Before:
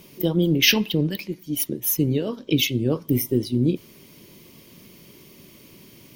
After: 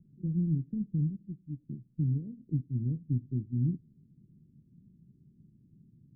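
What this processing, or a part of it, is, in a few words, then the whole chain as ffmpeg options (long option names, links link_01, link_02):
the neighbour's flat through the wall: -af "lowpass=frequency=220:width=0.5412,lowpass=frequency=220:width=1.3066,equalizer=frequency=140:width_type=o:width=0.58:gain=5,volume=-8dB"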